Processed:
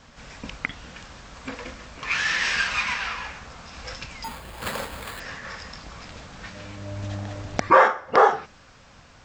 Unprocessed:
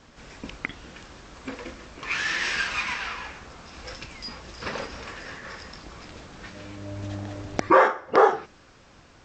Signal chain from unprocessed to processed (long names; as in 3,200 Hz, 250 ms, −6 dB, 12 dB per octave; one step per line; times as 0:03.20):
parametric band 350 Hz −9 dB 0.63 octaves
0:04.24–0:05.20: sample-rate reduction 5,800 Hz, jitter 0%
level +3 dB